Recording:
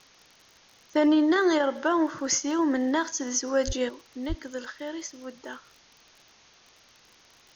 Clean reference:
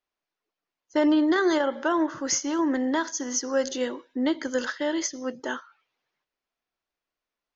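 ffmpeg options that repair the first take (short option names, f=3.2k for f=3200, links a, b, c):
-filter_complex "[0:a]adeclick=t=4,asplit=3[a][b][c];[a]afade=t=out:st=3.66:d=0.02[d];[b]highpass=f=140:w=0.5412,highpass=f=140:w=1.3066,afade=t=in:st=3.66:d=0.02,afade=t=out:st=3.78:d=0.02[e];[c]afade=t=in:st=3.78:d=0.02[f];[d][e][f]amix=inputs=3:normalize=0,asplit=3[g][h][i];[g]afade=t=out:st=4.28:d=0.02[j];[h]highpass=f=140:w=0.5412,highpass=f=140:w=1.3066,afade=t=in:st=4.28:d=0.02,afade=t=out:st=4.4:d=0.02[k];[i]afade=t=in:st=4.4:d=0.02[l];[j][k][l]amix=inputs=3:normalize=0,afwtdn=0.0022,asetnsamples=n=441:p=0,asendcmd='3.89 volume volume 8.5dB',volume=0dB"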